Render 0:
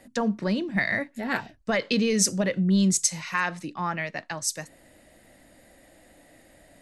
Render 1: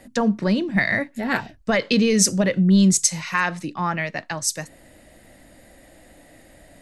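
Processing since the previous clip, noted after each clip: low shelf 130 Hz +5 dB; gain +4.5 dB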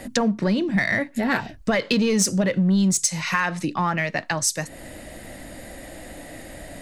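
in parallel at -6 dB: overloaded stage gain 18.5 dB; on the sum: compressor 2.5:1, threshold -31 dBFS, peak gain reduction 13.5 dB; gain +7 dB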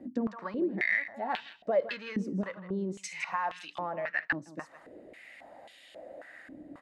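echo 0.16 s -13 dB; stepped band-pass 3.7 Hz 290–3200 Hz

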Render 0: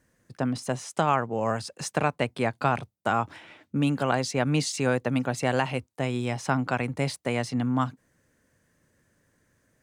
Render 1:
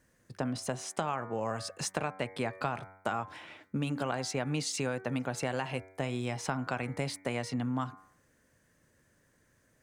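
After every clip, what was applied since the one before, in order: bell 190 Hz -2 dB 1.8 oct; de-hum 95.04 Hz, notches 25; compressor 4:1, threshold -30 dBFS, peak gain reduction 11 dB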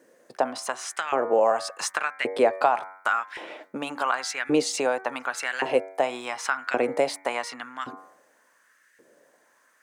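bell 250 Hz +11 dB 2.2 oct; LFO high-pass saw up 0.89 Hz 420–1900 Hz; gain +5.5 dB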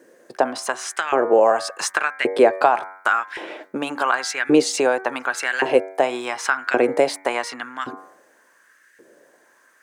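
small resonant body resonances 360/1600 Hz, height 6 dB, ringing for 25 ms; gain +4.5 dB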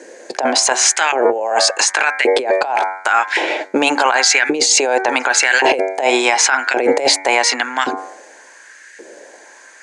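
speaker cabinet 330–9000 Hz, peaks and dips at 830 Hz +5 dB, 1200 Hz -9 dB, 2300 Hz +5 dB, 4400 Hz +5 dB, 6700 Hz +8 dB; negative-ratio compressor -24 dBFS, ratio -1; maximiser +11.5 dB; gain -1 dB

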